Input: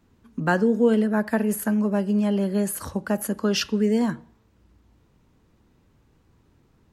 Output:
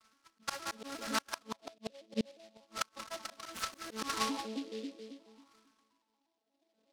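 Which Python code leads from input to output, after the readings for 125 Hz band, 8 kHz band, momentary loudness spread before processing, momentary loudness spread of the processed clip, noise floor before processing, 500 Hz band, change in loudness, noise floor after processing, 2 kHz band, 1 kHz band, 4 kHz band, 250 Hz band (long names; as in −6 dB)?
−25.5 dB, −9.0 dB, 8 LU, 12 LU, −62 dBFS, −20.5 dB, −16.5 dB, −82 dBFS, −11.5 dB, −7.5 dB, −6.0 dB, −21.0 dB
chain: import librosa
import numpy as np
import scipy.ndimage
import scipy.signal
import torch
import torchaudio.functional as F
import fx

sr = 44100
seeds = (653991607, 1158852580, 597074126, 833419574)

p1 = fx.vocoder_arp(x, sr, chord='major triad', root=57, every_ms=118)
p2 = fx.level_steps(p1, sr, step_db=16)
p3 = p1 + F.gain(torch.from_numpy(p2), -3.0).numpy()
p4 = fx.high_shelf(p3, sr, hz=5100.0, db=7.0)
p5 = fx.filter_sweep_lowpass(p4, sr, from_hz=1300.0, to_hz=600.0, start_s=5.51, end_s=6.76, q=6.0)
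p6 = fx.echo_split(p5, sr, split_hz=490.0, low_ms=272, high_ms=178, feedback_pct=52, wet_db=-8.5)
p7 = fx.dynamic_eq(p6, sr, hz=950.0, q=1.6, threshold_db=-40.0, ratio=4.0, max_db=3)
p8 = fx.auto_swell(p7, sr, attack_ms=134.0)
p9 = fx.wah_lfo(p8, sr, hz=0.36, low_hz=500.0, high_hz=3200.0, q=3.4)
p10 = fx.gate_flip(p9, sr, shuts_db=-27.0, range_db=-34)
p11 = fx.noise_mod_delay(p10, sr, seeds[0], noise_hz=3400.0, depth_ms=0.1)
y = F.gain(torch.from_numpy(p11), 6.0).numpy()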